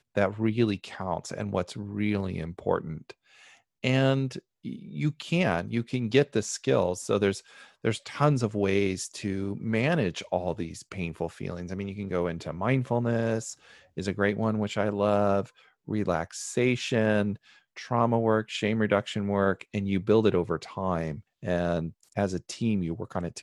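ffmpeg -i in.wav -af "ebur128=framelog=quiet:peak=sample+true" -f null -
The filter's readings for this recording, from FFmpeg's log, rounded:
Integrated loudness:
  I:         -28.3 LUFS
  Threshold: -38.6 LUFS
Loudness range:
  LRA:         4.0 LU
  Threshold: -48.5 LUFS
  LRA low:   -30.8 LUFS
  LRA high:  -26.8 LUFS
Sample peak:
  Peak:       -7.6 dBFS
True peak:
  Peak:       -7.6 dBFS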